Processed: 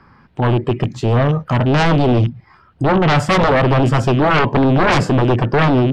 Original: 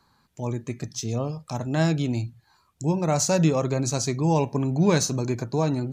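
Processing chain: rattling part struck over -28 dBFS, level -32 dBFS; formant shift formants +3 st; air absorption 390 m; sine folder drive 14 dB, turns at -9.5 dBFS

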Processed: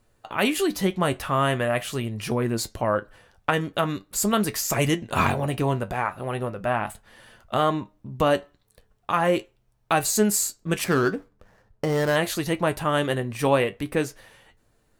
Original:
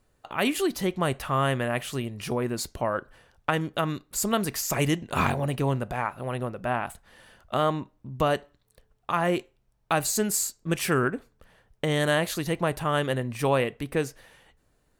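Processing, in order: 10.84–12.16 median filter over 15 samples; flange 0.41 Hz, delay 8.6 ms, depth 2.3 ms, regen +58%; gain +7 dB

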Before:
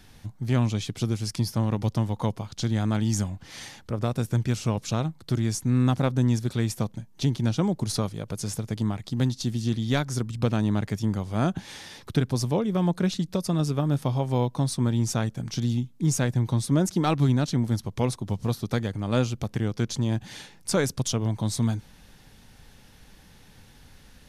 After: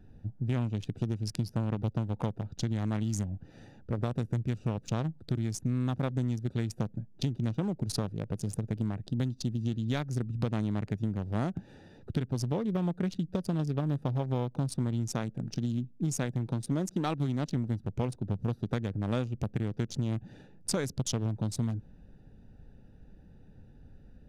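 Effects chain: Wiener smoothing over 41 samples; 15.08–17.55 bell 79 Hz -13 dB 0.76 oct; compressor, threshold -27 dBFS, peak gain reduction 9.5 dB

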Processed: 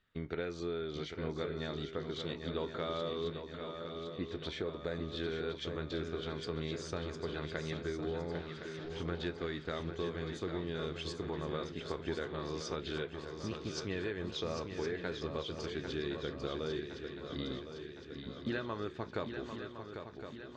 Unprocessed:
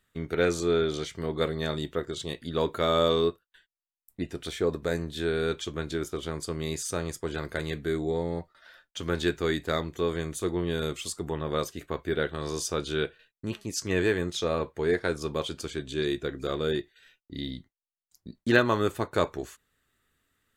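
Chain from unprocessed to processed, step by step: 8.32–9.01 delta modulation 32 kbps, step -45 dBFS; LPF 4900 Hz 24 dB/oct; compressor 6:1, threshold -31 dBFS, peak gain reduction 15 dB; swung echo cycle 1.062 s, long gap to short 3:1, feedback 55%, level -7.5 dB; gain -4 dB

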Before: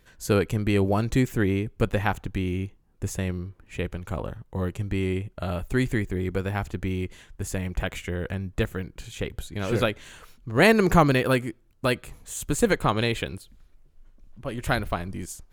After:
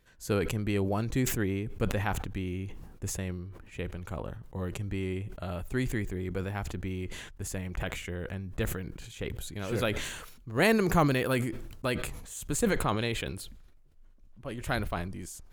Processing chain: 9.35–11.48 high shelf 8400 Hz +6 dB; sustainer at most 48 dB/s; gain -7 dB

